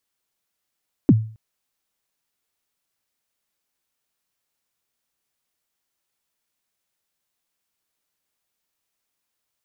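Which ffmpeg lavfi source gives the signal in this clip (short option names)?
-f lavfi -i "aevalsrc='0.501*pow(10,-3*t/0.42)*sin(2*PI*(340*0.041/log(110/340)*(exp(log(110/340)*min(t,0.041)/0.041)-1)+110*max(t-0.041,0)))':d=0.27:s=44100"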